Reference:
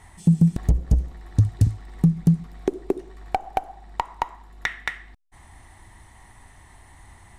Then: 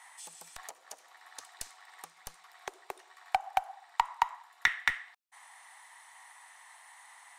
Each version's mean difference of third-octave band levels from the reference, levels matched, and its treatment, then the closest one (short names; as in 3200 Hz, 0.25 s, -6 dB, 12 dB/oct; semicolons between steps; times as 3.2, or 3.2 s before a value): 12.0 dB: HPF 840 Hz 24 dB/oct; in parallel at -7 dB: Schmitt trigger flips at -25.5 dBFS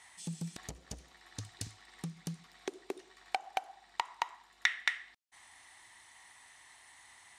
9.0 dB: band-pass 4400 Hz, Q 0.71; gain +1.5 dB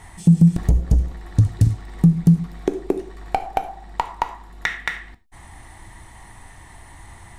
2.0 dB: non-linear reverb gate 0.13 s falling, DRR 10.5 dB; in parallel at 0 dB: limiter -18.5 dBFS, peak gain reduction 11.5 dB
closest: third